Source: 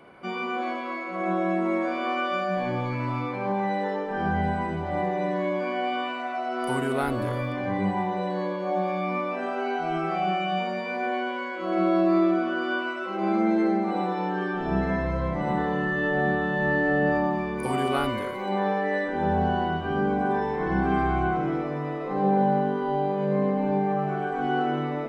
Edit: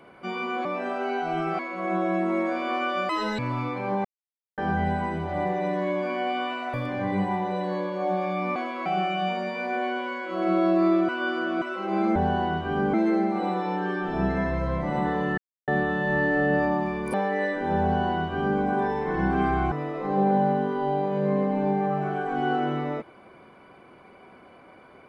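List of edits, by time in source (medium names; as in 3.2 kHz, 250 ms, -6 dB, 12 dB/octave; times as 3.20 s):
0.65–0.95 s: swap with 9.22–10.16 s
2.45–2.96 s: speed 172%
3.62–4.15 s: mute
6.31–7.40 s: delete
12.39–12.92 s: reverse
15.90–16.20 s: mute
17.66–18.66 s: delete
19.35–20.13 s: copy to 13.46 s
21.24–21.78 s: delete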